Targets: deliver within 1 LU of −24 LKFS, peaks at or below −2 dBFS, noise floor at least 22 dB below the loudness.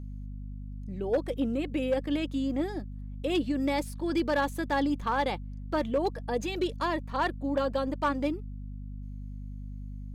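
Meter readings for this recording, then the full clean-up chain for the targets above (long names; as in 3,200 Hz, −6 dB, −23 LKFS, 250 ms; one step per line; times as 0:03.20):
share of clipped samples 0.4%; peaks flattened at −20.0 dBFS; mains hum 50 Hz; hum harmonics up to 250 Hz; level of the hum −37 dBFS; integrated loudness −30.5 LKFS; sample peak −20.0 dBFS; target loudness −24.0 LKFS
→ clipped peaks rebuilt −20 dBFS
mains-hum notches 50/100/150/200/250 Hz
level +6.5 dB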